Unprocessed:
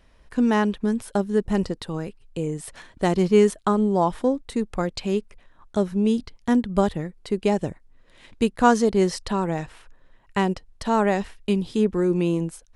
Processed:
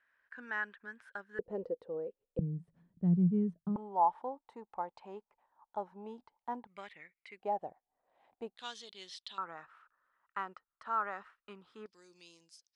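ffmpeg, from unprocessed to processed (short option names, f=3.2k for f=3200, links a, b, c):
-af "asetnsamples=n=441:p=0,asendcmd='1.39 bandpass f 500;2.39 bandpass f 170;3.76 bandpass f 870;6.67 bandpass f 2200;7.4 bandpass f 760;8.57 bandpass f 3500;9.38 bandpass f 1300;11.86 bandpass f 5000',bandpass=f=1.6k:t=q:w=7.7:csg=0"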